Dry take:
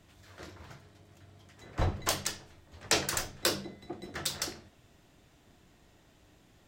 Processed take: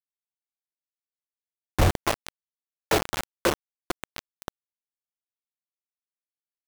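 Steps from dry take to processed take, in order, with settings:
low-pass filter 1,200 Hz 12 dB per octave
in parallel at 0 dB: downward compressor 6 to 1, threshold −49 dBFS, peak gain reduction 22.5 dB
on the sum: bit reduction 5 bits
level +8 dB

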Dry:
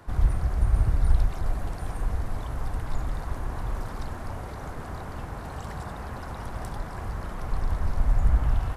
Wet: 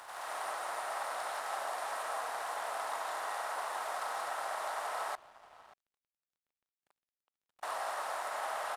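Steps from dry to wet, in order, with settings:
compressor on every frequency bin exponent 0.4
comb and all-pass reverb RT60 1.4 s, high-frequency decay 0.25×, pre-delay 115 ms, DRR −5 dB
0:05.15–0:07.63: noise gate −6 dBFS, range −32 dB
high-pass filter 660 Hz 24 dB per octave
slap from a distant wall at 100 metres, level −16 dB
dead-zone distortion −54 dBFS
level −6 dB

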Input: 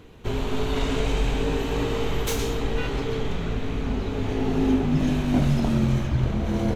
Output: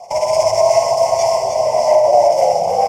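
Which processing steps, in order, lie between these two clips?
variable-slope delta modulation 32 kbit/s
low-shelf EQ 340 Hz −5 dB
compressor whose output falls as the input rises −26 dBFS, ratio −1
rotating-speaker cabinet horn 7 Hz, later 0.75 Hz, at 0:00.86
log-companded quantiser 8 bits
formant filter u
phaser with its sweep stopped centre 310 Hz, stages 4
single-tap delay 730 ms −6.5 dB
wrong playback speed 33 rpm record played at 78 rpm
boost into a limiter +29 dB
level −1 dB

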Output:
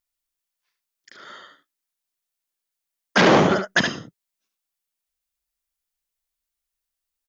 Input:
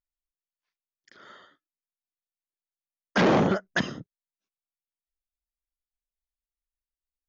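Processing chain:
spectral tilt +1.5 dB per octave
single-tap delay 72 ms −7 dB
level +6.5 dB

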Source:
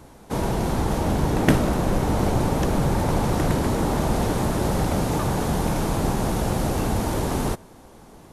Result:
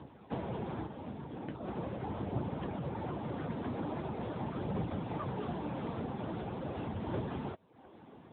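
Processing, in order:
reverb reduction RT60 0.55 s
downward compressor 8 to 1, threshold −28 dBFS, peak gain reduction 16 dB
0:00.86–0:01.54: tuned comb filter 130 Hz, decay 1.9 s, mix 50%
flanger 0.42 Hz, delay 0 ms, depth 4.5 ms, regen +72%
0:05.26–0:05.96: double-tracking delay 17 ms −13 dB
AMR narrowband 10.2 kbit/s 8,000 Hz

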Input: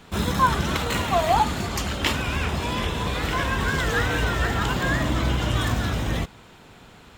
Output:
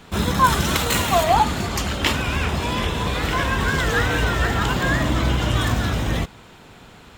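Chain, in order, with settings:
0:00.44–0:01.24: high-shelf EQ 5,400 Hz +10.5 dB
level +3 dB

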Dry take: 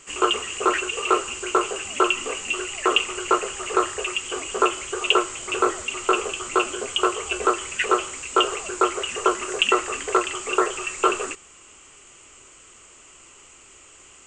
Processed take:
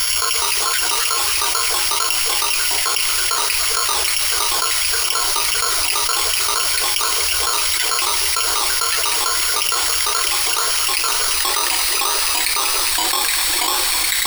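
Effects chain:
samples sorted by size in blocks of 8 samples
guitar amp tone stack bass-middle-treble 10-0-10
in parallel at −9 dB: soft clipping −15.5 dBFS, distortion −11 dB
on the sum: EQ curve with evenly spaced ripples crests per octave 1.8, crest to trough 11 dB
delay with pitch and tempo change per echo 173 ms, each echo −2 semitones, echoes 3, each echo −6 dB
envelope flattener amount 100%
level −1.5 dB

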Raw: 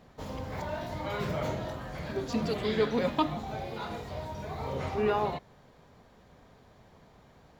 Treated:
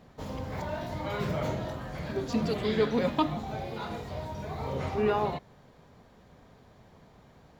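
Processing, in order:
parametric band 160 Hz +2.5 dB 2.4 octaves

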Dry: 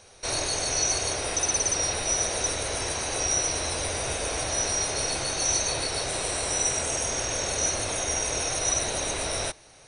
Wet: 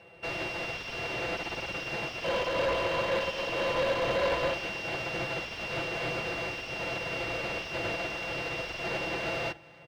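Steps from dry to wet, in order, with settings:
samples sorted by size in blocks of 16 samples
high-pass filter 65 Hz 24 dB per octave
notch filter 1,100 Hz
comb filter 5.9 ms, depth 84%
sine wavefolder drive 14 dB, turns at −10.5 dBFS
0:02.24–0:04.54: hollow resonant body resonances 550/1,000/3,100 Hz, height 16 dB, ringing for 45 ms
hard clipping −23.5 dBFS, distortion −5 dB
high-frequency loss of the air 250 metres
echo with a time of its own for lows and highs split 870 Hz, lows 100 ms, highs 269 ms, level −13 dB
expander for the loud parts 2.5 to 1, over −36 dBFS

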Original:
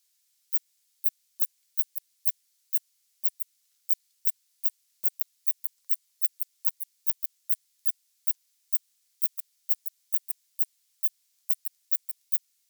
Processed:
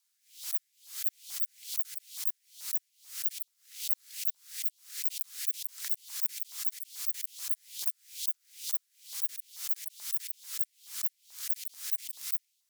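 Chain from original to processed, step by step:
frequency shifter −88 Hz
auto-filter high-pass saw up 2.3 Hz 890–3,700 Hz
background raised ahead of every attack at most 140 dB per second
level −5.5 dB

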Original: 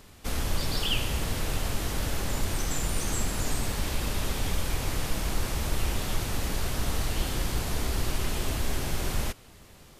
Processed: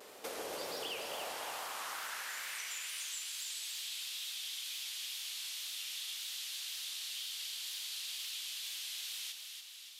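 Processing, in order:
tape wow and flutter 66 cents
high-pass filter sweep 480 Hz → 3,400 Hz, 0:00.84–0:03.14
hard clipping −23.5 dBFS, distortion −26 dB
downward compressor 4 to 1, threshold −42 dBFS, peak gain reduction 13 dB
delay that swaps between a low-pass and a high-pass 143 ms, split 1,100 Hz, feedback 70%, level −3 dB

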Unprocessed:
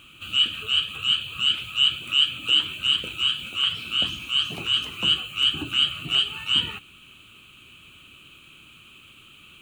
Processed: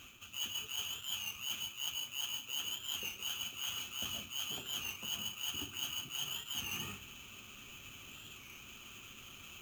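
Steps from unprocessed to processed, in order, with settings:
harmonic and percussive parts rebalanced harmonic −5 dB
on a send at −6 dB: convolution reverb RT60 0.50 s, pre-delay 121 ms
on the sum: sample-rate reduction 9,600 Hz, jitter 0%
notch comb filter 160 Hz
reversed playback
downward compressor 6 to 1, threshold −39 dBFS, peak gain reduction 20.5 dB
reversed playback
wow of a warped record 33 1/3 rpm, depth 100 cents

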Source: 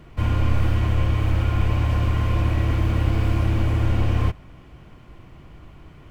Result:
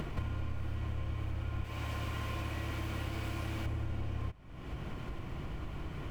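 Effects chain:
0:01.64–0:03.66: spectral tilt +2 dB per octave
downward compressor 6 to 1, threshold −54 dBFS, peak gain reduction 35.5 dB
level +16 dB

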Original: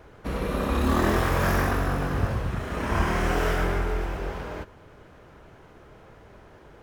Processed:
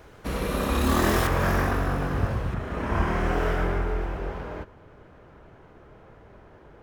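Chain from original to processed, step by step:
high-shelf EQ 3,400 Hz +7.5 dB, from 0:01.27 −4 dB, from 0:02.54 −11 dB

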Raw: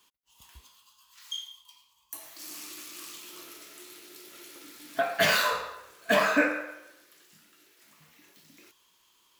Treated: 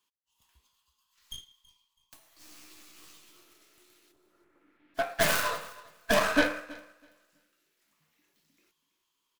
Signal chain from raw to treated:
stylus tracing distortion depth 0.26 ms
0:02.30–0:03.37: double-tracking delay 13 ms −4.5 dB
0:04.11–0:04.94: low-pass filter 1,200 Hz → 2,700 Hz 24 dB per octave
repeating echo 327 ms, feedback 31%, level −14.5 dB
expander for the loud parts 1.5 to 1, over −47 dBFS

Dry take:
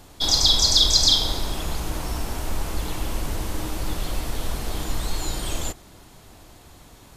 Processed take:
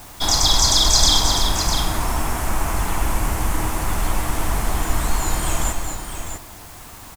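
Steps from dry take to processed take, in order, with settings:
octave-band graphic EQ 500/1,000/2,000/4,000/8,000 Hz −5/+6/+4/−9/+4 dB
multi-tap delay 225/653 ms −7/−7.5 dB
bit-depth reduction 8 bits, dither triangular
parametric band 680 Hz +3 dB 0.21 octaves
level +4.5 dB

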